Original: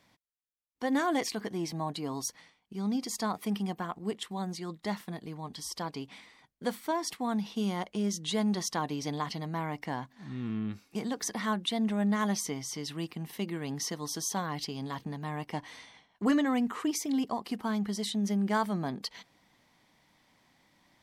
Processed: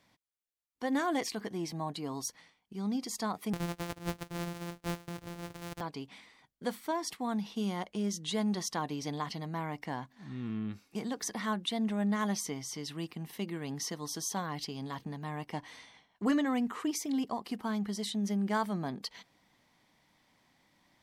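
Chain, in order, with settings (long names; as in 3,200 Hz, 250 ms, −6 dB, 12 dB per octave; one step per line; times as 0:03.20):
0:03.53–0:05.81: samples sorted by size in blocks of 256 samples
level −2.5 dB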